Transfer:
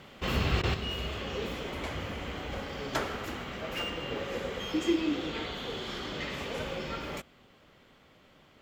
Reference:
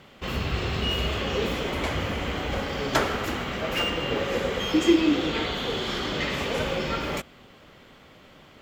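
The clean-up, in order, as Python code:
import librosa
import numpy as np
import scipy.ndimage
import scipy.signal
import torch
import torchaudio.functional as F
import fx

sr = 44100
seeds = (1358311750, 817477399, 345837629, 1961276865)

y = fx.fix_interpolate(x, sr, at_s=(0.62,), length_ms=13.0)
y = fx.fix_level(y, sr, at_s=0.74, step_db=8.5)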